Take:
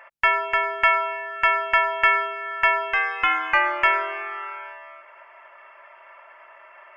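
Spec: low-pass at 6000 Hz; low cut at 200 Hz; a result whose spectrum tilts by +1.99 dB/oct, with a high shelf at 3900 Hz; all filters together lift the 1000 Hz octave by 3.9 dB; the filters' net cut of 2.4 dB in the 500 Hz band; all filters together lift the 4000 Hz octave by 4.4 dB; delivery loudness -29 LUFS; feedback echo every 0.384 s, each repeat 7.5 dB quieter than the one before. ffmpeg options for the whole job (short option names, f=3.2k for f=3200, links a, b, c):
-af "highpass=200,lowpass=6k,equalizer=f=500:t=o:g=-7.5,equalizer=f=1k:t=o:g=6,highshelf=f=3.9k:g=3.5,equalizer=f=4k:t=o:g=4.5,aecho=1:1:384|768|1152|1536|1920:0.422|0.177|0.0744|0.0312|0.0131,volume=-12dB"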